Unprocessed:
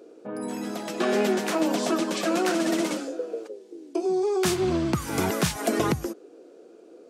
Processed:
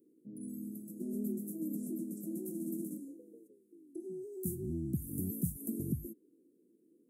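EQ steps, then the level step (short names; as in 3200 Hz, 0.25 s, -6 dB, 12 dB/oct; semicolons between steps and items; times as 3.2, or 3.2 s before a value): high shelf 2700 Hz +6.5 dB; dynamic EQ 770 Hz, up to +3 dB, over -34 dBFS, Q 0.76; inverse Chebyshev band-stop 1100–3300 Hz, stop band 80 dB; -7.5 dB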